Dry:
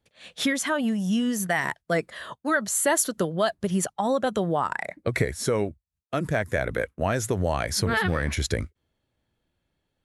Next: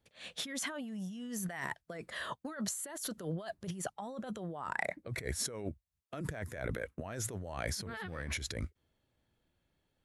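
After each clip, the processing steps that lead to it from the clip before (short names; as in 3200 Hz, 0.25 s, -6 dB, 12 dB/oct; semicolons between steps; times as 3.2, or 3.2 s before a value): negative-ratio compressor -32 dBFS, ratio -1; gain -8 dB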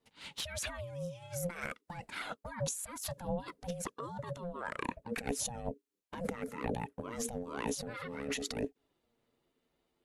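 envelope flanger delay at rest 10.1 ms, full sweep at -33.5 dBFS; ring modulator 350 Hz; gain +5.5 dB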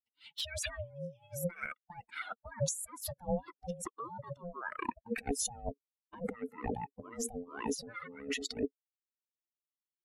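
per-bin expansion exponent 2; gain +5 dB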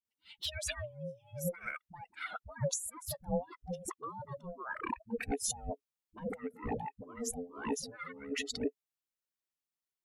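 dispersion highs, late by 48 ms, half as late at 420 Hz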